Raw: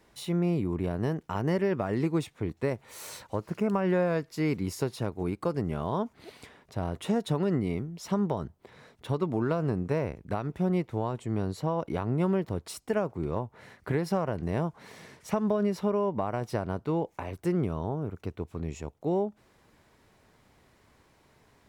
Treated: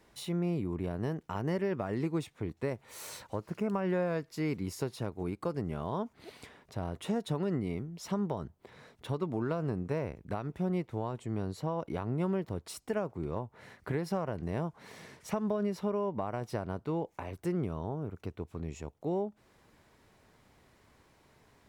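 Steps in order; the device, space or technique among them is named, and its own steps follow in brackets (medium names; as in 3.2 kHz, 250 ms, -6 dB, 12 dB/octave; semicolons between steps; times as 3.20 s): parallel compression (in parallel at -3 dB: compression, threshold -40 dBFS, peak gain reduction 16 dB); on the sum: trim -6 dB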